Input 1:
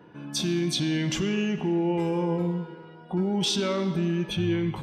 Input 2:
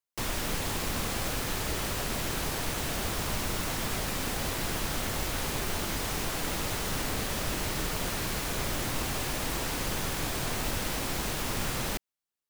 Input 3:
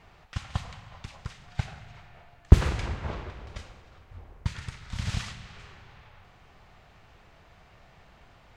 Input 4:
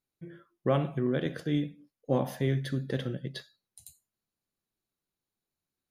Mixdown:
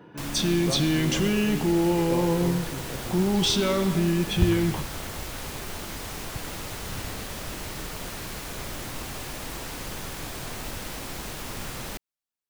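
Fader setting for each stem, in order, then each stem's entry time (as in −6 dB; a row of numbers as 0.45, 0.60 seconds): +2.5, −3.5, −8.5, −6.5 decibels; 0.00, 0.00, 1.90, 0.00 seconds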